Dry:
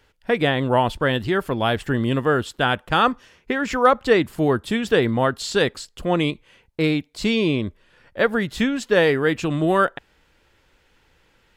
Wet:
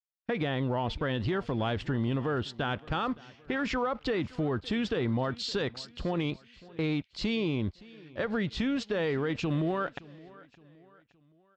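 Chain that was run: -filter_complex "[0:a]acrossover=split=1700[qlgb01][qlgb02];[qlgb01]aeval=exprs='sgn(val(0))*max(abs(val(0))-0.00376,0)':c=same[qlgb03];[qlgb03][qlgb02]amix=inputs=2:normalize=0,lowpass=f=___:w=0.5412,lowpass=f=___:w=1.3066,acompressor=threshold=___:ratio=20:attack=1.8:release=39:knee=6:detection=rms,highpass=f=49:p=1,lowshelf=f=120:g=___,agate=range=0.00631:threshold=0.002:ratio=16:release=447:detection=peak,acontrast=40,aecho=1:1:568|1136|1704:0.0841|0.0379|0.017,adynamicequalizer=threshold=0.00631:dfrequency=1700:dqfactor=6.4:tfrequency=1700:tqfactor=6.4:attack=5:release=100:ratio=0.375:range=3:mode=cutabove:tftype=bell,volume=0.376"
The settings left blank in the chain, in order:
5300, 5300, 0.0794, 8.5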